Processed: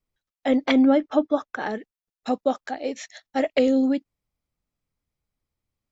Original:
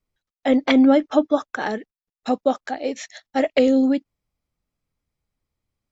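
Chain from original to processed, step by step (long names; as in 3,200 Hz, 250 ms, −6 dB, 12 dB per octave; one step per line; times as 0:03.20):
0:00.82–0:01.75: high-shelf EQ 5,800 Hz −10.5 dB
level −3 dB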